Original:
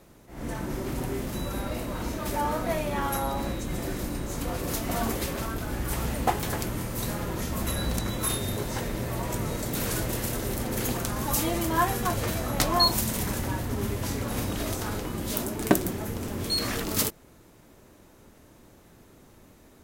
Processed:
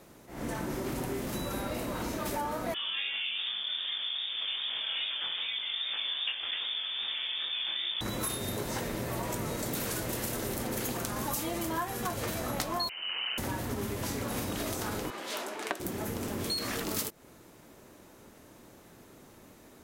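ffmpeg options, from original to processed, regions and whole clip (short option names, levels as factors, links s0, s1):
-filter_complex "[0:a]asettb=1/sr,asplit=3[s0][s1][s2];[s0]atrim=end=2.744[s3];[s1]atrim=start=2.74:end=8.01,asetpts=PTS-STARTPTS,afade=t=in:d=0.004:c=qsin,afade=t=out:st=5.266:d=0.004:c=qsin,lowpass=f=3100:t=q:w=0.5098,lowpass=f=3100:t=q:w=0.6013,lowpass=f=3100:t=q:w=0.9,lowpass=f=3100:t=q:w=2.563,afreqshift=-3600,flanger=delay=19:depth=4.3:speed=2.5[s4];[s2]atrim=start=8.006[s5];[s3][s4]acrossfade=d=0.004:c1=hsin:c2=qsin[s6];[s6][s5]acrossfade=d=0.004:c1=qsin:c2=hsin,asettb=1/sr,asplit=3[s7][s8][s9];[s7]atrim=end=12.894[s10];[s8]atrim=start=12.89:end=13.38,asetpts=PTS-STARTPTS,afade=t=in:d=0.004:c=qsin,afade=t=out:st=0.486:d=0.004:c=qsin,asoftclip=type=hard:threshold=0.0355,lowpass=f=2600:t=q:w=0.5098,lowpass=f=2600:t=q:w=0.6013,lowpass=f=2600:t=q:w=0.9,lowpass=f=2600:t=q:w=2.563,afreqshift=-3100[s11];[s9]atrim=start=13.376[s12];[s10][s11]acrossfade=d=0.004:c1=hsin:c2=qsin[s13];[s13][s12]acrossfade=d=0.004:c1=qsin:c2=hsin,asettb=1/sr,asplit=3[s14][s15][s16];[s14]atrim=end=15.104[s17];[s15]atrim=start=15.1:end=15.8,asetpts=PTS-STARTPTS,afade=t=in:d=0.004:c=qsin,afade=t=out:st=0.696:d=0.004:c=qsin,highpass=550,lowpass=2700,aemphasis=mode=production:type=75fm[s18];[s16]atrim=start=15.796[s19];[s17][s18]acrossfade=d=0.004:c1=hsin:c2=qsin[s20];[s20][s19]acrossfade=d=0.004:c1=qsin:c2=hsin,lowshelf=f=97:g=-11,acompressor=threshold=0.0251:ratio=6,volume=1.19"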